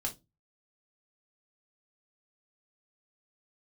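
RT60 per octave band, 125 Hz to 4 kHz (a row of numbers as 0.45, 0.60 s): 0.40, 0.35, 0.25, 0.15, 0.15, 0.20 s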